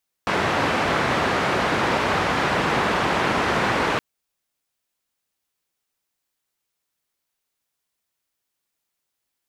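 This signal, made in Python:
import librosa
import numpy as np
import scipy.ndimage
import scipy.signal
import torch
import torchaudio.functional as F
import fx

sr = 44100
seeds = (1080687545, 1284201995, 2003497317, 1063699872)

y = fx.band_noise(sr, seeds[0], length_s=3.72, low_hz=83.0, high_hz=1500.0, level_db=-21.5)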